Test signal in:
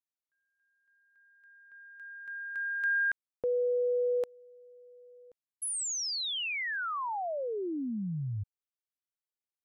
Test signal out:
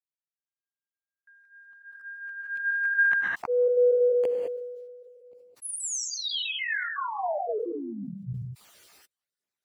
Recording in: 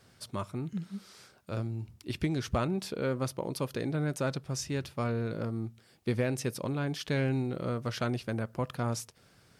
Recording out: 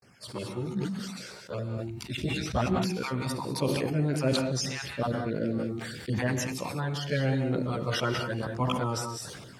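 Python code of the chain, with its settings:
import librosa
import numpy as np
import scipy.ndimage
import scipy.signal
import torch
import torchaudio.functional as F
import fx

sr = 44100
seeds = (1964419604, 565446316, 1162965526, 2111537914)

y = fx.spec_dropout(x, sr, seeds[0], share_pct=35)
y = fx.chorus_voices(y, sr, voices=2, hz=0.53, base_ms=15, depth_ms=1.2, mix_pct=65)
y = fx.highpass(y, sr, hz=150.0, slope=6)
y = fx.high_shelf(y, sr, hz=11000.0, db=-8.5)
y = fx.rev_gated(y, sr, seeds[1], gate_ms=230, shape='rising', drr_db=6.0)
y = fx.gate_hold(y, sr, open_db=-59.0, close_db=-62.0, hold_ms=499.0, range_db=-35, attack_ms=3.7, release_ms=29.0)
y = fx.sustainer(y, sr, db_per_s=31.0)
y = y * 10.0 ** (6.0 / 20.0)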